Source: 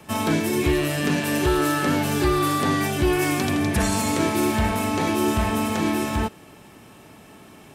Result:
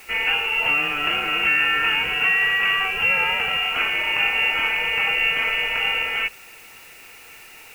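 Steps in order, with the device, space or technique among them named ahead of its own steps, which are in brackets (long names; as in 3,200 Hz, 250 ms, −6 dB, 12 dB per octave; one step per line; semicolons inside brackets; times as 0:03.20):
scrambled radio voice (band-pass filter 370–2,700 Hz; voice inversion scrambler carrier 3,100 Hz; white noise bed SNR 26 dB)
level +4.5 dB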